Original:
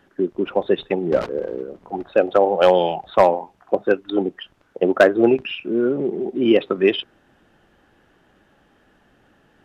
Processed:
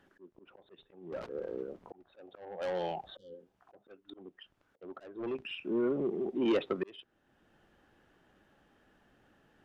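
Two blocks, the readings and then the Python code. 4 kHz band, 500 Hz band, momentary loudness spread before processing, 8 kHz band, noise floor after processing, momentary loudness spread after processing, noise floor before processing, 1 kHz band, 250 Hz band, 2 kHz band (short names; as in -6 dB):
-17.0 dB, -19.0 dB, 13 LU, n/a, -75 dBFS, 23 LU, -59 dBFS, -22.0 dB, -15.5 dB, -21.0 dB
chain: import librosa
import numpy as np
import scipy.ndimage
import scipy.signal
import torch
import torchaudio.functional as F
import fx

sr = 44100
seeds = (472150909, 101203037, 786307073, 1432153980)

y = 10.0 ** (-14.0 / 20.0) * np.tanh(x / 10.0 ** (-14.0 / 20.0))
y = fx.spec_repair(y, sr, seeds[0], start_s=3.13, length_s=0.37, low_hz=540.0, high_hz=2900.0, source='both')
y = fx.auto_swell(y, sr, attack_ms=757.0)
y = y * librosa.db_to_amplitude(-9.0)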